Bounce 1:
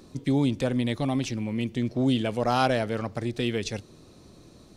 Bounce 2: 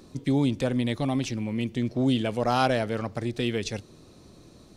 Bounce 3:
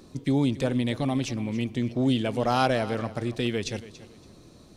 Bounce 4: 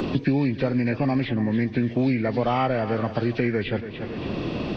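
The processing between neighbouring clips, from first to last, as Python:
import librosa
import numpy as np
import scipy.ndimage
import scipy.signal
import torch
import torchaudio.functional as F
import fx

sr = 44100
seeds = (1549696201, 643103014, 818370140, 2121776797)

y1 = x
y2 = fx.echo_feedback(y1, sr, ms=282, feedback_pct=25, wet_db=-16)
y3 = fx.freq_compress(y2, sr, knee_hz=1100.0, ratio=1.5)
y3 = fx.band_squash(y3, sr, depth_pct=100)
y3 = F.gain(torch.from_numpy(y3), 2.5).numpy()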